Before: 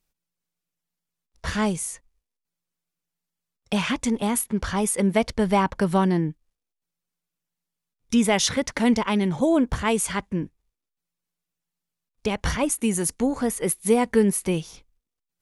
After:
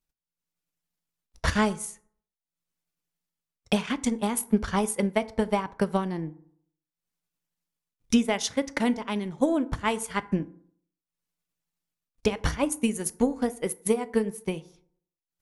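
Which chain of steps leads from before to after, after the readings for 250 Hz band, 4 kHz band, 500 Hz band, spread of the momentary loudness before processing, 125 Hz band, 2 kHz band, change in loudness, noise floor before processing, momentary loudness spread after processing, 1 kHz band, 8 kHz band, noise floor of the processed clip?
-4.0 dB, -4.5 dB, -3.5 dB, 10 LU, -5.0 dB, -3.5 dB, -4.0 dB, -85 dBFS, 7 LU, -4.0 dB, -6.5 dB, under -85 dBFS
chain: transient shaper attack +10 dB, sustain -9 dB; FDN reverb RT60 0.56 s, low-frequency decay 1×, high-frequency decay 0.5×, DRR 13 dB; level rider gain up to 8 dB; trim -9 dB

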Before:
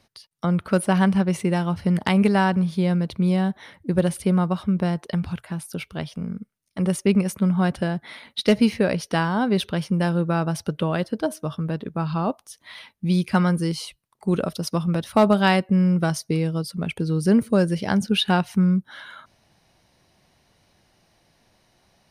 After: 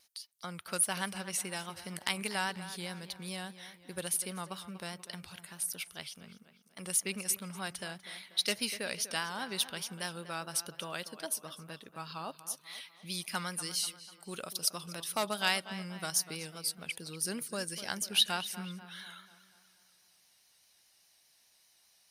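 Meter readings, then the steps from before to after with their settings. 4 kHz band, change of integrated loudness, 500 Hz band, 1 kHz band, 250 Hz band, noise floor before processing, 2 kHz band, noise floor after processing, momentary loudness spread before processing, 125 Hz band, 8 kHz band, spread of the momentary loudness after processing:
-2.5 dB, -12.5 dB, -18.5 dB, -13.5 dB, -24.0 dB, -67 dBFS, -8.0 dB, -67 dBFS, 13 LU, -24.5 dB, +4.5 dB, 15 LU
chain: pre-emphasis filter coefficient 0.97; tape echo 244 ms, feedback 54%, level -13 dB, low-pass 3.6 kHz; vibrato 4.9 Hz 52 cents; trim +3.5 dB

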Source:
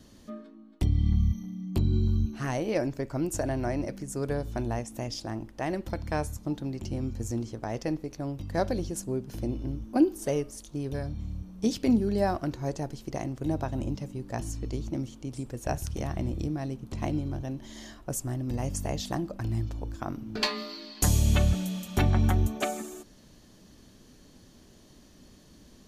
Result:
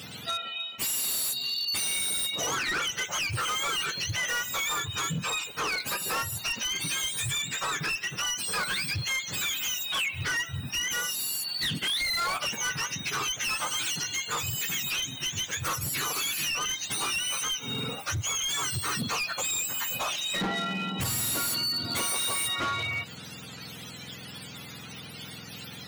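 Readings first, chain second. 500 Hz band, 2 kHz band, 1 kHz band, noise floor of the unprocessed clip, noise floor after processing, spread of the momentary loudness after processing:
-9.0 dB, +12.5 dB, +3.5 dB, -55 dBFS, -43 dBFS, 7 LU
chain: spectrum inverted on a logarithmic axis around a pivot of 910 Hz; overdrive pedal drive 26 dB, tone 8 kHz, clips at -7.5 dBFS; compression 4:1, threshold -28 dBFS, peak gain reduction 12 dB; hard clipper -26.5 dBFS, distortion -16 dB; attacks held to a fixed rise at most 380 dB/s

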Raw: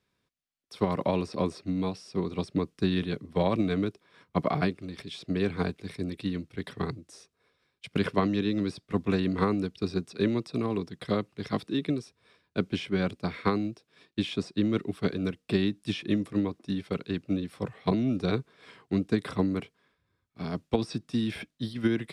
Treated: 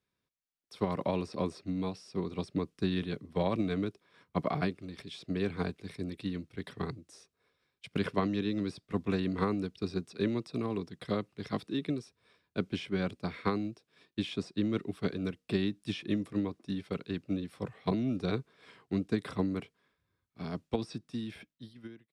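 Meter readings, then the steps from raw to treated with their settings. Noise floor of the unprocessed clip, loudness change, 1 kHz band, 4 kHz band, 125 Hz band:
-79 dBFS, -4.5 dB, -4.5 dB, -5.0 dB, -4.5 dB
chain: fade out at the end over 1.60 s; level rider gain up to 4 dB; trim -8.5 dB

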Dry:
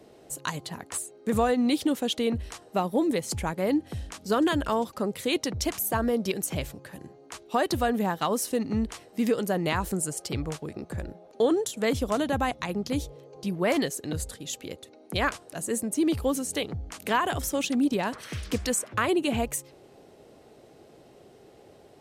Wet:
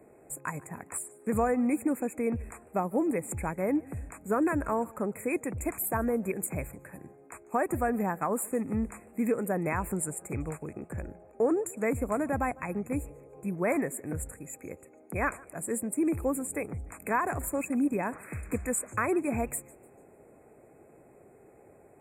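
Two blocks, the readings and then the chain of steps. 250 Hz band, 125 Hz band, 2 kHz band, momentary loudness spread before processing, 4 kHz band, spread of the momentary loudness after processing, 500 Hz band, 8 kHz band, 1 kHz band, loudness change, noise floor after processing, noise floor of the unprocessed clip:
-3.0 dB, -3.0 dB, -3.5 dB, 12 LU, under -40 dB, 12 LU, -3.0 dB, -4.0 dB, -3.0 dB, -3.0 dB, -57 dBFS, -54 dBFS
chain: brick-wall FIR band-stop 2.6–6.9 kHz; modulated delay 148 ms, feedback 45%, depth 131 cents, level -23.5 dB; trim -3 dB

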